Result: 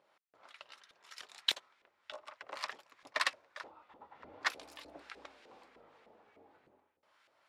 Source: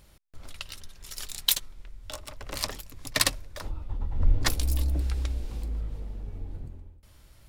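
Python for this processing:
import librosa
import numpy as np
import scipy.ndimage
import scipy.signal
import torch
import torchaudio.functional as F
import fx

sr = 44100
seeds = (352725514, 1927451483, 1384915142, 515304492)

y = fx.weighting(x, sr, curve='A')
y = fx.filter_lfo_bandpass(y, sr, shape='saw_up', hz=3.3, low_hz=510.0, high_hz=2000.0, q=1.1)
y = y * 10.0 ** (-1.5 / 20.0)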